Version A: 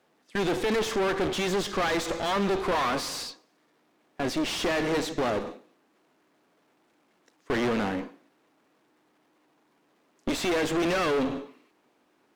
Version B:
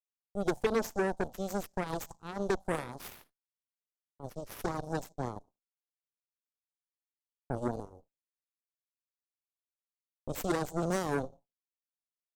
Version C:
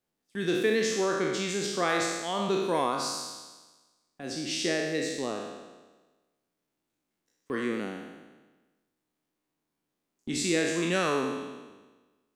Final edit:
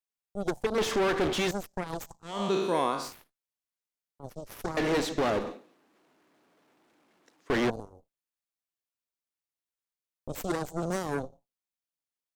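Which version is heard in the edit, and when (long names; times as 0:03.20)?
B
0:00.78–0:01.51: punch in from A
0:02.34–0:03.03: punch in from C, crossfade 0.24 s
0:04.77–0:07.70: punch in from A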